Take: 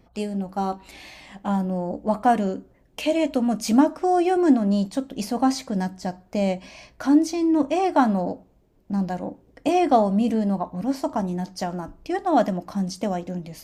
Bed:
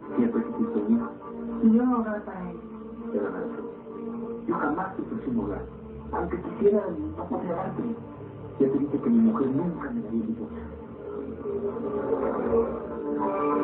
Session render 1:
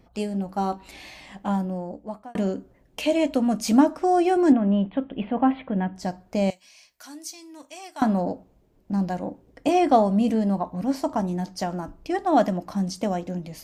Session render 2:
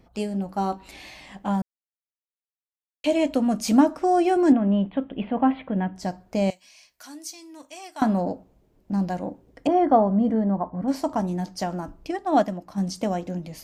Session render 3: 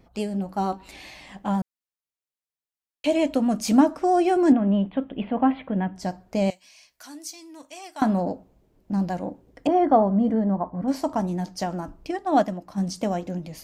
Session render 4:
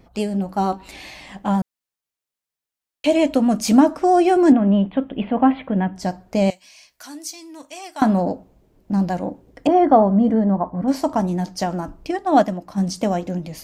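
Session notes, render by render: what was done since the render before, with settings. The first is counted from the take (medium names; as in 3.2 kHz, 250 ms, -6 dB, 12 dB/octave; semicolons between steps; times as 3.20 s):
1.42–2.35 s: fade out; 4.52–5.96 s: steep low-pass 3.3 kHz 72 dB/octave; 6.50–8.02 s: pre-emphasis filter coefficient 0.97
1.62–3.04 s: mute; 9.67–10.88 s: Savitzky-Golay filter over 41 samples; 12.11–12.78 s: upward expansion, over -29 dBFS
vibrato 11 Hz 30 cents
trim +5 dB; peak limiter -3 dBFS, peak gain reduction 2.5 dB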